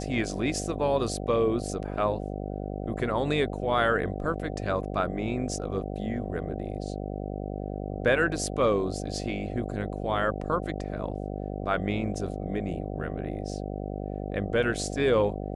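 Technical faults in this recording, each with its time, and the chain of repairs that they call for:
buzz 50 Hz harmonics 15 -34 dBFS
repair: de-hum 50 Hz, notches 15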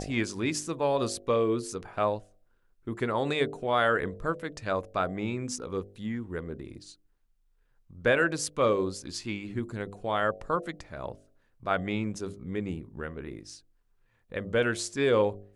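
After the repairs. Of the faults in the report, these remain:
nothing left

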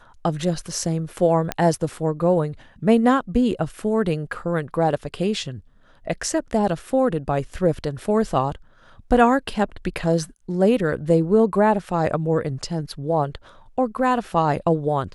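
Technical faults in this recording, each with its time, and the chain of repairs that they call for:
1.52 s: pop -8 dBFS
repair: de-click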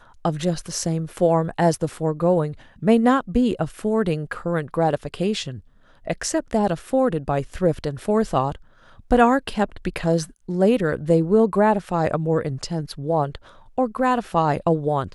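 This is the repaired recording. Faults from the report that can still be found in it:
nothing left

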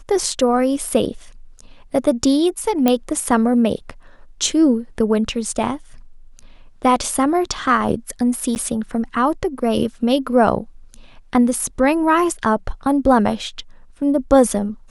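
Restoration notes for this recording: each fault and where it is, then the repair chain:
2.88 s: pop -3 dBFS
8.55–8.56 s: dropout 9.9 ms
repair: de-click; interpolate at 8.55 s, 9.9 ms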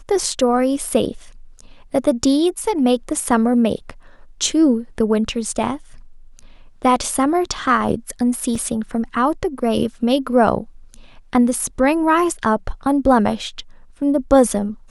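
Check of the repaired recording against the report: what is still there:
nothing left

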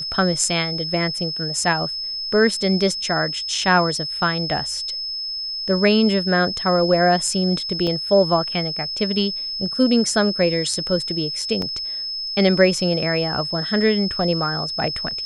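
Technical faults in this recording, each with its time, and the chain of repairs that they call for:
whine 5.2 kHz -25 dBFS
7.87 s: dropout 3.1 ms
11.62 s: dropout 2.1 ms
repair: band-stop 5.2 kHz, Q 30; interpolate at 7.87 s, 3.1 ms; interpolate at 11.62 s, 2.1 ms

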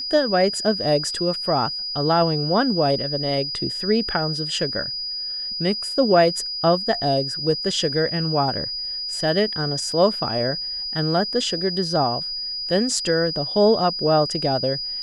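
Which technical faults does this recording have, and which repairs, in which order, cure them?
whine 4.9 kHz -26 dBFS
9.92 s: dropout 2 ms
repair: band-stop 4.9 kHz, Q 30; interpolate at 9.92 s, 2 ms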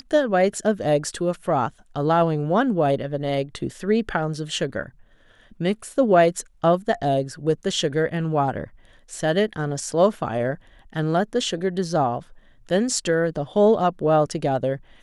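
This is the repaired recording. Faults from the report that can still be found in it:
nothing left

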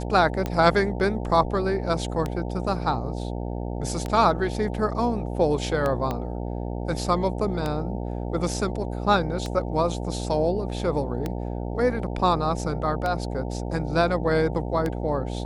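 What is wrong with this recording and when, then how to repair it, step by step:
buzz 60 Hz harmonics 15 -30 dBFS
tick 33 1/3 rpm -14 dBFS
6.11 s: pop -15 dBFS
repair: de-click; de-hum 60 Hz, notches 15

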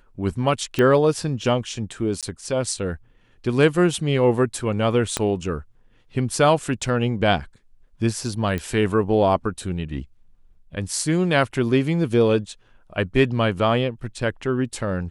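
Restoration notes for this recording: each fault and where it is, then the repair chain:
0.79 s: pop -9 dBFS
2.21–2.23 s: dropout 17 ms
5.17 s: pop -7 dBFS
8.58 s: pop -15 dBFS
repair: de-click; interpolate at 2.21 s, 17 ms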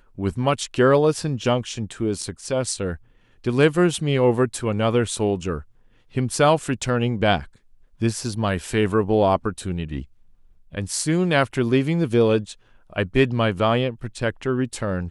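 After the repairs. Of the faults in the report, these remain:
5.17 s: pop

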